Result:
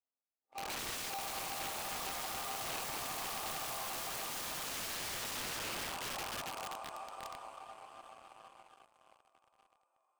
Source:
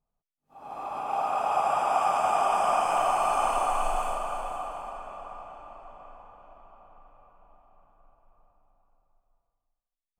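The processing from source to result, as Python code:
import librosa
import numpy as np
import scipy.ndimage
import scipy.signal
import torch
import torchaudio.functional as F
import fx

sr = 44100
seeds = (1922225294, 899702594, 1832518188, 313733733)

p1 = scipy.signal.sosfilt(scipy.signal.ellip(3, 1.0, 40, [300.0, 9100.0], 'bandpass', fs=sr, output='sos'), x)
p2 = fx.echo_diffused(p1, sr, ms=914, feedback_pct=57, wet_db=-15)
p3 = fx.rider(p2, sr, range_db=4, speed_s=0.5)
p4 = p2 + F.gain(torch.from_numpy(p3), -2.5).numpy()
p5 = fx.peak_eq(p4, sr, hz=2900.0, db=-3.5, octaves=0.32)
p6 = fx.resonator_bank(p5, sr, root=41, chord='major', decay_s=0.51)
p7 = 10.0 ** (-28.5 / 20.0) * np.tanh(p6 / 10.0 ** (-28.5 / 20.0))
p8 = fx.echo_feedback(p7, sr, ms=279, feedback_pct=29, wet_db=-5.5)
p9 = fx.leveller(p8, sr, passes=3)
p10 = (np.mod(10.0 ** (36.5 / 20.0) * p9 + 1.0, 2.0) - 1.0) / 10.0 ** (36.5 / 20.0)
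y = F.gain(torch.from_numpy(p10), 1.0).numpy()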